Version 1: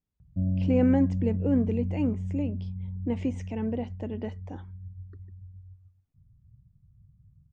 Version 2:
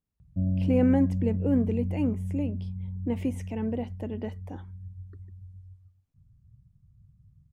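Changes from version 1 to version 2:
background: remove air absorption 490 m; master: remove steep low-pass 7500 Hz 48 dB/oct

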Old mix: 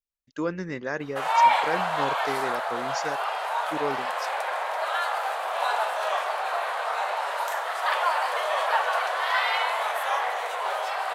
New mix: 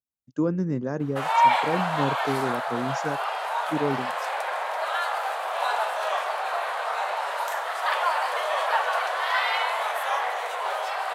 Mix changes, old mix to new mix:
speech: add graphic EQ 125/250/2000/4000 Hz +11/+7/-12/-10 dB; master: add HPF 80 Hz

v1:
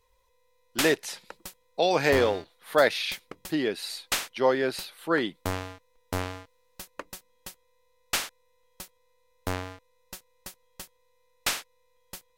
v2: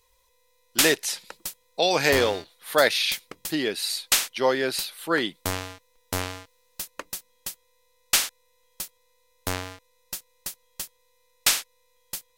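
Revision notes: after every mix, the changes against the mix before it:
master: add high shelf 2700 Hz +10.5 dB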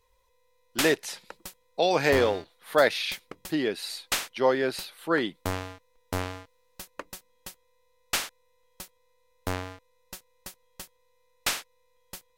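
master: add high shelf 2700 Hz -10.5 dB

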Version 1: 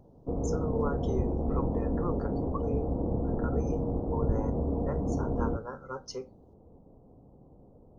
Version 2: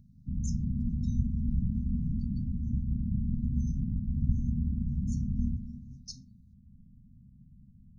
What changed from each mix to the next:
background: send +11.0 dB; master: add brick-wall FIR band-stop 250–3600 Hz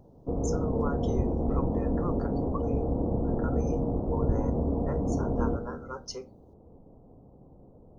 speech: add tilt +1.5 dB/oct; master: remove brick-wall FIR band-stop 250–3600 Hz

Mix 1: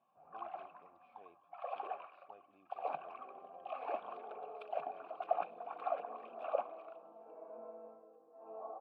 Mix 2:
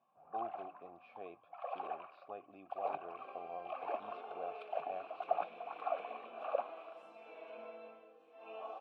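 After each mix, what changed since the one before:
speech +11.5 dB; second sound: remove LPF 1100 Hz 24 dB/oct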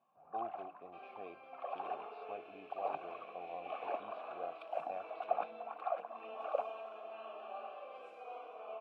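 second sound: entry -2.25 s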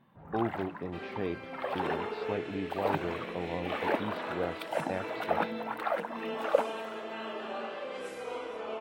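master: remove vowel filter a

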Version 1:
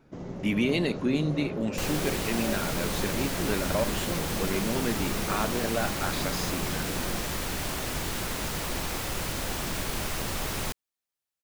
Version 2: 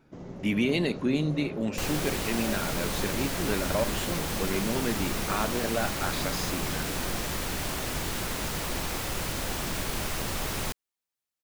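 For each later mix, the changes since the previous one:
first sound -3.5 dB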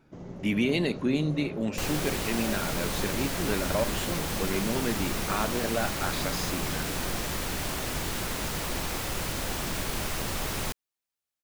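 reverb: off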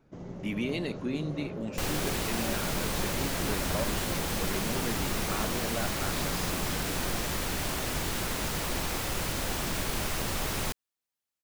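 speech -6.5 dB

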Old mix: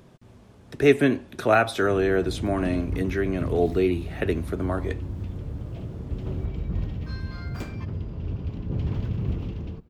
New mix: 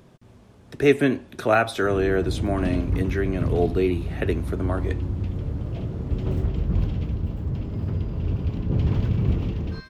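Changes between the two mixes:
first sound +5.5 dB; second sound: entry +2.65 s

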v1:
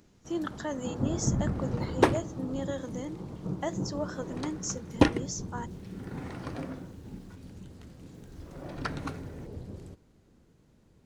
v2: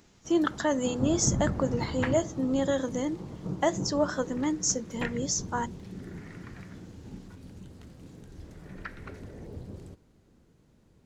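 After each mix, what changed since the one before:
speech +8.0 dB; second sound: add band-pass 1900 Hz, Q 2.7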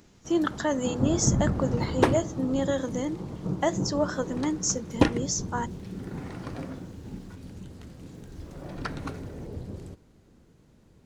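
first sound +4.0 dB; second sound: remove band-pass 1900 Hz, Q 2.7

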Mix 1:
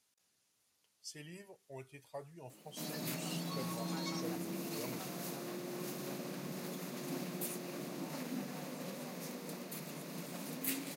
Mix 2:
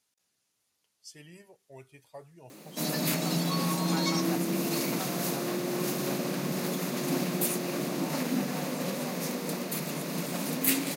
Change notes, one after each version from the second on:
background +12.0 dB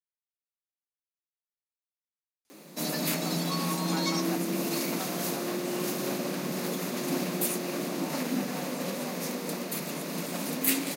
speech: entry +2.45 s; master: add bell 130 Hz -9 dB 0.48 oct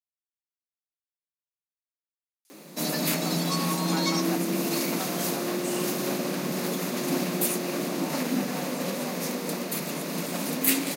speech: add tilt +4 dB/oct; background +3.0 dB

